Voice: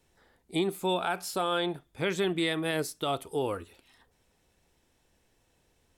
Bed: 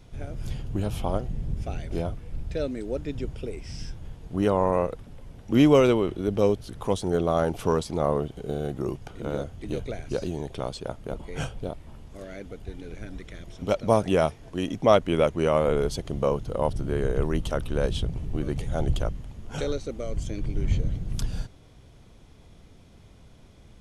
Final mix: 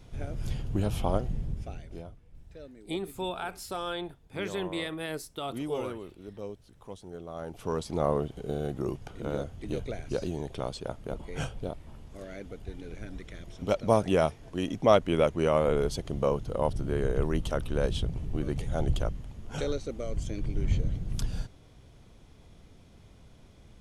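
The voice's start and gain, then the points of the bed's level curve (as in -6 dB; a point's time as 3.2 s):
2.35 s, -5.5 dB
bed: 1.33 s -0.5 dB
2.22 s -18 dB
7.28 s -18 dB
7.95 s -2.5 dB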